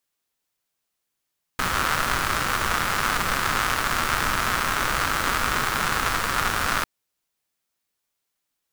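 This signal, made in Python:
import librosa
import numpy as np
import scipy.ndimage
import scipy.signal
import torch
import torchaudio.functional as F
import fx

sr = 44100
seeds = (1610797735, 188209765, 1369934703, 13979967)

y = fx.rain(sr, seeds[0], length_s=5.25, drops_per_s=210.0, hz=1300.0, bed_db=-4.0)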